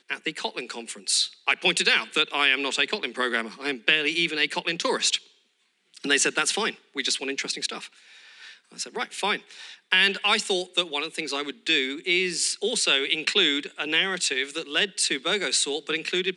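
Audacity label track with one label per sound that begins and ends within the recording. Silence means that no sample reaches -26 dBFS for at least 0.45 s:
6.040000	7.840000	sound
8.800000	9.360000	sound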